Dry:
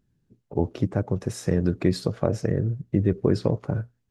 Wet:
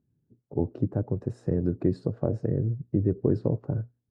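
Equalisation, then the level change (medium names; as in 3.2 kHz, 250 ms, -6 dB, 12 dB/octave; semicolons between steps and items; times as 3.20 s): cabinet simulation 160–9400 Hz, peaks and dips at 190 Hz -7 dB, 1.2 kHz -3 dB, 2.2 kHz -9 dB, 3.3 kHz -8 dB, 6 kHz -6 dB; tilt EQ -4.5 dB/octave; band-stop 2.2 kHz, Q 25; -8.5 dB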